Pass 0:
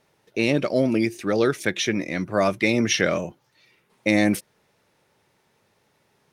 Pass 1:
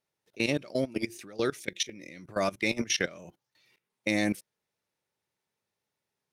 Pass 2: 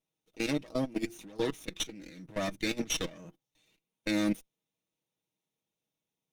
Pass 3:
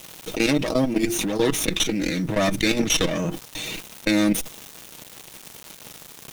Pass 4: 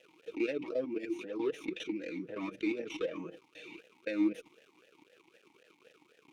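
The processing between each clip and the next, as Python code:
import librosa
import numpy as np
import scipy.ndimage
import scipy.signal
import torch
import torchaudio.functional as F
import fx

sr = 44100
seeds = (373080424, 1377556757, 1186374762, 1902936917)

y1 = fx.spec_box(x, sr, start_s=1.65, length_s=0.54, low_hz=600.0, high_hz=1800.0, gain_db=-9)
y1 = fx.high_shelf(y1, sr, hz=3000.0, db=7.5)
y1 = fx.level_steps(y1, sr, step_db=20)
y1 = F.gain(torch.from_numpy(y1), -6.5).numpy()
y2 = fx.lower_of_two(y1, sr, delay_ms=0.31)
y2 = y2 + 0.57 * np.pad(y2, (int(6.3 * sr / 1000.0), 0))[:len(y2)]
y2 = fx.small_body(y2, sr, hz=(240.0, 3600.0), ring_ms=45, db=9)
y2 = F.gain(torch.from_numpy(y2), -4.5).numpy()
y3 = fx.quant_companded(y2, sr, bits=8)
y3 = fx.env_flatten(y3, sr, amount_pct=70)
y3 = F.gain(torch.from_numpy(y3), 8.0).numpy()
y4 = fx.vowel_sweep(y3, sr, vowels='e-u', hz=3.9)
y4 = F.gain(torch.from_numpy(y4), -4.0).numpy()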